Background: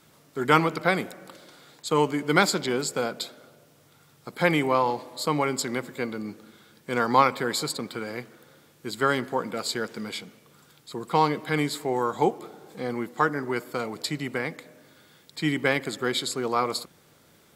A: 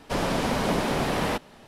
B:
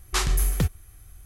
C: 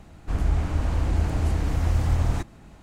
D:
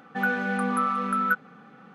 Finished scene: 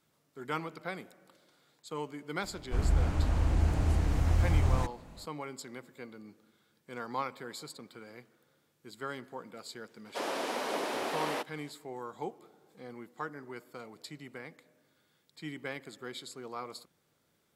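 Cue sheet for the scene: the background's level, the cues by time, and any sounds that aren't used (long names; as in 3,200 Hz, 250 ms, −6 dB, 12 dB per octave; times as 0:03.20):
background −16 dB
0:02.44: mix in C −4 dB
0:10.05: mix in A −7 dB + high-pass filter 310 Hz 24 dB per octave
not used: B, D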